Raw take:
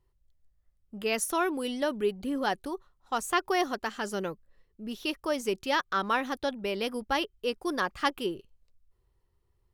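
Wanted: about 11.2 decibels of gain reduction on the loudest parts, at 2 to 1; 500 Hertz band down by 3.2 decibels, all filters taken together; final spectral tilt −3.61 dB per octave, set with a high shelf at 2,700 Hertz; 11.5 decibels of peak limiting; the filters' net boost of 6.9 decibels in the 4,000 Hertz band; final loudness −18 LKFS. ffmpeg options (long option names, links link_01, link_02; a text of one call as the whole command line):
ffmpeg -i in.wav -af "equalizer=frequency=500:width_type=o:gain=-4.5,highshelf=frequency=2700:gain=4.5,equalizer=frequency=4000:width_type=o:gain=6,acompressor=threshold=-41dB:ratio=2,volume=24dB,alimiter=limit=-6.5dB:level=0:latency=1" out.wav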